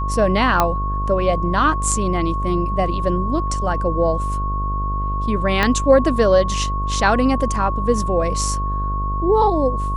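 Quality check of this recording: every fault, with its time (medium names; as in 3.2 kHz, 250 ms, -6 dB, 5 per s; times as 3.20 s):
buzz 50 Hz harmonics 15 -23 dBFS
whine 1.1 kHz -24 dBFS
0.60 s: pop -2 dBFS
5.63 s: pop -4 dBFS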